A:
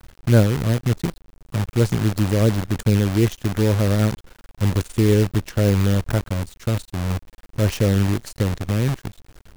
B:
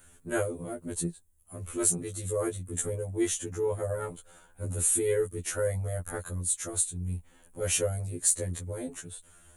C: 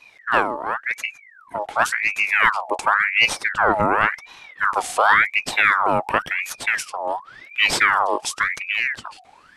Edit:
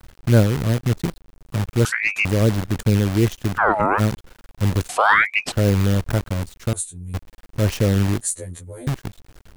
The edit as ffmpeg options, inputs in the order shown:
-filter_complex "[2:a]asplit=3[s0][s1][s2];[1:a]asplit=2[s3][s4];[0:a]asplit=6[s5][s6][s7][s8][s9][s10];[s5]atrim=end=1.852[s11];[s0]atrim=start=1.848:end=2.252[s12];[s6]atrim=start=2.248:end=3.59[s13];[s1]atrim=start=3.55:end=4.01[s14];[s7]atrim=start=3.97:end=4.892[s15];[s2]atrim=start=4.888:end=5.522[s16];[s8]atrim=start=5.518:end=6.732[s17];[s3]atrim=start=6.728:end=7.142[s18];[s9]atrim=start=7.138:end=8.212[s19];[s4]atrim=start=8.208:end=8.872[s20];[s10]atrim=start=8.868[s21];[s11][s12]acrossfade=d=0.004:c1=hsin:c2=hsin[s22];[s22][s13]acrossfade=d=0.004:c1=hsin:c2=hsin[s23];[s23][s14]acrossfade=d=0.04:c1=tri:c2=tri[s24];[s24][s15]acrossfade=d=0.04:c1=tri:c2=tri[s25];[s25][s16]acrossfade=d=0.004:c1=hsin:c2=hsin[s26];[s26][s17]acrossfade=d=0.004:c1=hsin:c2=hsin[s27];[s27][s18]acrossfade=d=0.004:c1=hsin:c2=hsin[s28];[s28][s19]acrossfade=d=0.004:c1=hsin:c2=hsin[s29];[s29][s20]acrossfade=d=0.004:c1=hsin:c2=hsin[s30];[s30][s21]acrossfade=d=0.004:c1=hsin:c2=hsin"

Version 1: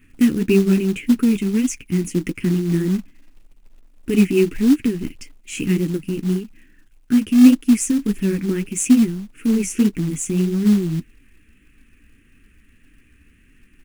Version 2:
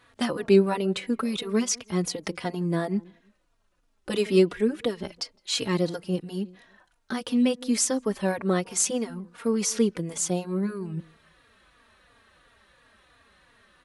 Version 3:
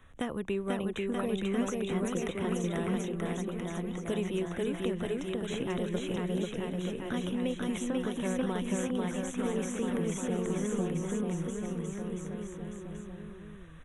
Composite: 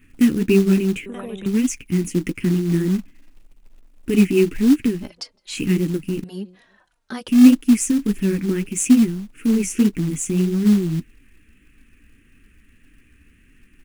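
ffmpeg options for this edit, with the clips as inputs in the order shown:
-filter_complex "[1:a]asplit=2[s0][s1];[0:a]asplit=4[s2][s3][s4][s5];[s2]atrim=end=1.062[s6];[2:a]atrim=start=1.058:end=1.462[s7];[s3]atrim=start=1.458:end=5.11[s8];[s0]atrim=start=4.95:end=5.61[s9];[s4]atrim=start=5.45:end=6.242[s10];[s1]atrim=start=6.238:end=7.282[s11];[s5]atrim=start=7.278[s12];[s6][s7]acrossfade=d=0.004:c1=hsin:c2=hsin[s13];[s13][s8]acrossfade=d=0.004:c1=hsin:c2=hsin[s14];[s14][s9]acrossfade=d=0.16:c1=tri:c2=tri[s15];[s15][s10]acrossfade=d=0.16:c1=tri:c2=tri[s16];[s16][s11]acrossfade=d=0.004:c1=hsin:c2=hsin[s17];[s17][s12]acrossfade=d=0.004:c1=hsin:c2=hsin"

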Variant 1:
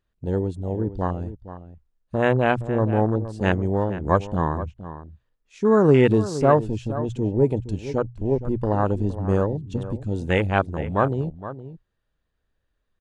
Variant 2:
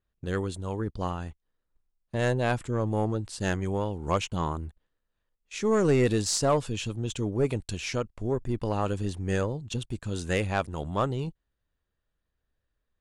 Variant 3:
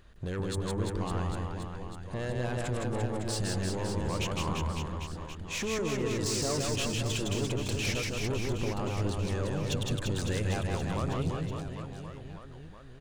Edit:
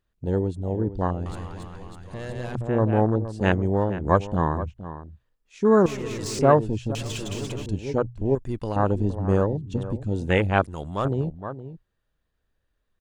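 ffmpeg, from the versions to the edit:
-filter_complex "[2:a]asplit=3[s0][s1][s2];[1:a]asplit=2[s3][s4];[0:a]asplit=6[s5][s6][s7][s8][s9][s10];[s5]atrim=end=1.262[s11];[s0]atrim=start=1.258:end=2.552[s12];[s6]atrim=start=2.548:end=5.862[s13];[s1]atrim=start=5.858:end=6.392[s14];[s7]atrim=start=6.388:end=6.952[s15];[s2]atrim=start=6.948:end=7.662[s16];[s8]atrim=start=7.658:end=8.352[s17];[s3]atrim=start=8.348:end=8.762[s18];[s9]atrim=start=8.758:end=10.642[s19];[s4]atrim=start=10.638:end=11.052[s20];[s10]atrim=start=11.048[s21];[s11][s12]acrossfade=d=0.004:c1=hsin:c2=hsin[s22];[s22][s13]acrossfade=d=0.004:c1=hsin:c2=hsin[s23];[s23][s14]acrossfade=d=0.004:c1=hsin:c2=hsin[s24];[s24][s15]acrossfade=d=0.004:c1=hsin:c2=hsin[s25];[s25][s16]acrossfade=d=0.004:c1=hsin:c2=hsin[s26];[s26][s17]acrossfade=d=0.004:c1=hsin:c2=hsin[s27];[s27][s18]acrossfade=d=0.004:c1=hsin:c2=hsin[s28];[s28][s19]acrossfade=d=0.004:c1=hsin:c2=hsin[s29];[s29][s20]acrossfade=d=0.004:c1=hsin:c2=hsin[s30];[s30][s21]acrossfade=d=0.004:c1=hsin:c2=hsin"

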